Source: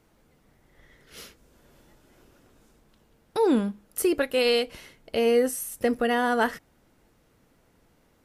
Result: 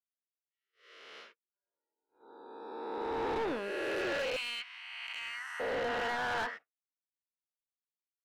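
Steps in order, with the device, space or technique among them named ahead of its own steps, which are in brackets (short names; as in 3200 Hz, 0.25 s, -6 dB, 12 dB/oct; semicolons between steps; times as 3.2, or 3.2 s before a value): spectral swells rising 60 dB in 2.33 s; 4.36–5.6 steep high-pass 1000 Hz 48 dB/oct; spectral noise reduction 28 dB; walkie-talkie (BPF 600–3000 Hz; hard clip -27.5 dBFS, distortion -6 dB; gate -52 dBFS, range -29 dB); high shelf 5100 Hz -9.5 dB; gain -3.5 dB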